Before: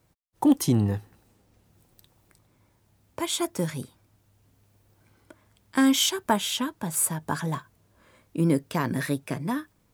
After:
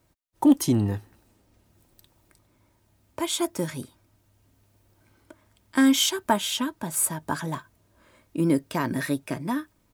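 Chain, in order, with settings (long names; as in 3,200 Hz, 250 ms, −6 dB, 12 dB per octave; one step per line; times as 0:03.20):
comb filter 3.2 ms, depth 31%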